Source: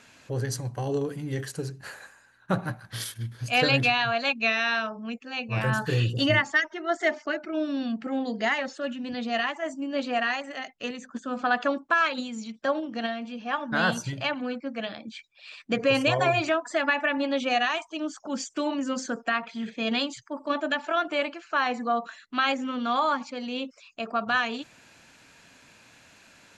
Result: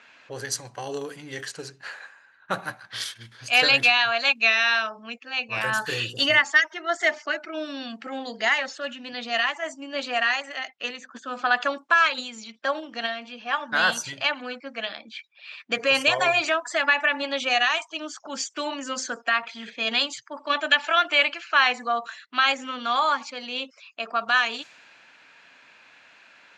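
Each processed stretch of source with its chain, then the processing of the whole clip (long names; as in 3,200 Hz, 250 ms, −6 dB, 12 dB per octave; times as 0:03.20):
0:20.37–0:21.73: linear-phase brick-wall band-pass 180–8,200 Hz + parametric band 2,700 Hz +6.5 dB 1.5 octaves
whole clip: low-pass that shuts in the quiet parts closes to 2,600 Hz, open at −23.5 dBFS; high-pass filter 1,400 Hz 6 dB per octave; level +7 dB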